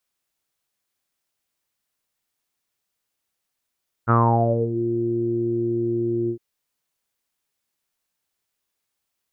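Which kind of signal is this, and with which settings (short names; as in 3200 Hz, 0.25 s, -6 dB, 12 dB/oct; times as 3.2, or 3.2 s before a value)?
synth note saw A#2 24 dB/oct, low-pass 350 Hz, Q 8.2, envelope 2 oct, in 0.69 s, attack 32 ms, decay 0.65 s, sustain -13 dB, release 0.09 s, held 2.22 s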